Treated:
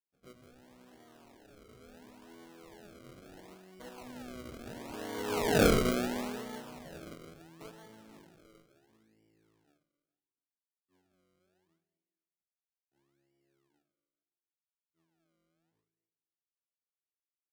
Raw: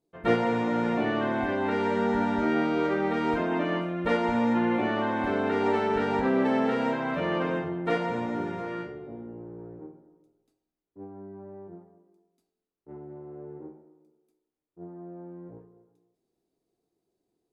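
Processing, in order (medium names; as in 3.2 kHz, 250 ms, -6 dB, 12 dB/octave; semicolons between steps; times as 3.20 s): Doppler pass-by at 5.66 s, 22 m/s, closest 1.6 m; decimation with a swept rate 34×, swing 100% 0.73 Hz; trim +5 dB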